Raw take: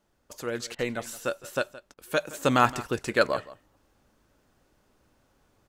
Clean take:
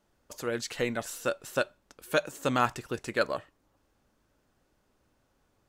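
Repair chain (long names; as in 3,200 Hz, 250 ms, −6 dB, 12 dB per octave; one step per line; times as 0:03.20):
repair the gap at 0:00.75/0:01.94, 35 ms
echo removal 169 ms −18 dB
level correction −5 dB, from 0:02.33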